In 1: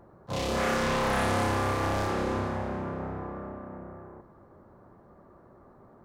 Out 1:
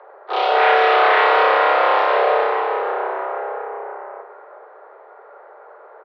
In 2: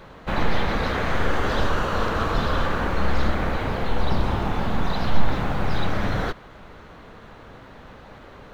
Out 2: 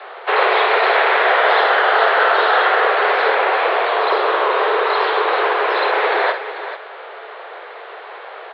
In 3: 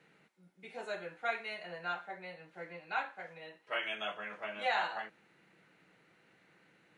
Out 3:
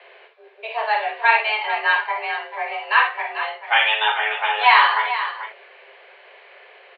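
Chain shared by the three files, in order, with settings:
multi-tap echo 48/61/439 ms -9.5/-10.5/-10.5 dB; mistuned SSB +220 Hz 200–3600 Hz; peak normalisation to -2 dBFS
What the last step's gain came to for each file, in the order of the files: +11.5 dB, +10.5 dB, +19.0 dB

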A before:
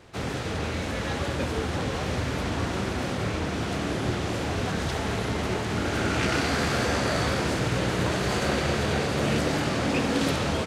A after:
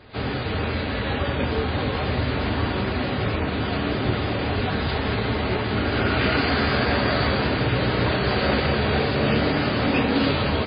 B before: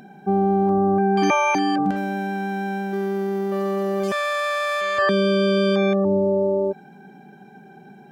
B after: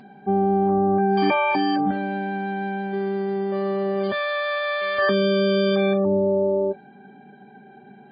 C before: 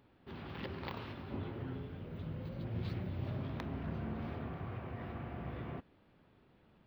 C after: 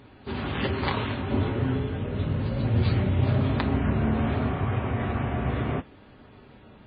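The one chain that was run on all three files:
comb of notches 170 Hz; MP3 16 kbps 11.025 kHz; peak normalisation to -9 dBFS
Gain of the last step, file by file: +5.5 dB, 0.0 dB, +17.5 dB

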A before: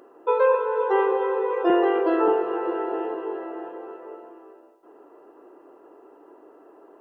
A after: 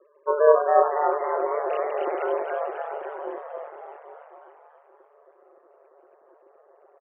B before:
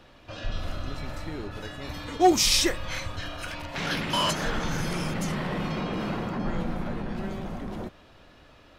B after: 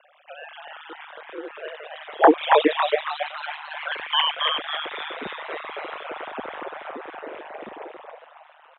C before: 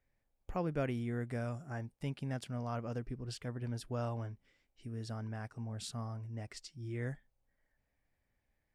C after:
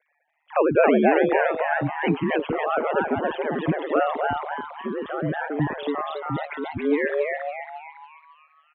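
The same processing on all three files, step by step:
formants replaced by sine waves; frequency-shifting echo 276 ms, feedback 44%, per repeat +140 Hz, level -3 dB; ring modulator 76 Hz; frequency shift +18 Hz; normalise loudness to -24 LUFS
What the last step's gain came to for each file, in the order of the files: 0.0 dB, +3.0 dB, +17.5 dB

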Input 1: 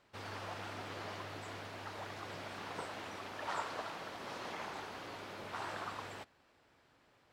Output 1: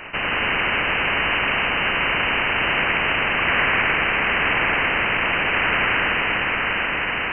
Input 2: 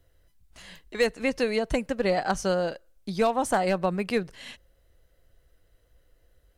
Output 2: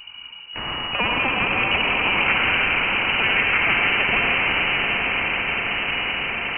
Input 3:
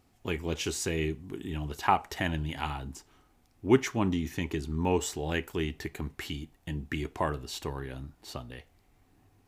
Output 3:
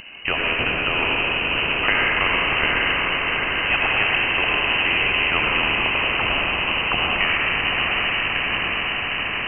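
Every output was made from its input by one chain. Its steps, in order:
compression 1.5:1, threshold -32 dBFS; algorithmic reverb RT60 1.9 s, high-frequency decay 0.6×, pre-delay 45 ms, DRR -2.5 dB; wow and flutter 27 cents; on a send: echo that smears into a reverb 802 ms, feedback 60%, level -5.5 dB; on the sum: frequency inversion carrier 2.9 kHz; spectrum-flattening compressor 2:1; normalise loudness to -19 LUFS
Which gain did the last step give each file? +15.5 dB, +3.5 dB, +10.0 dB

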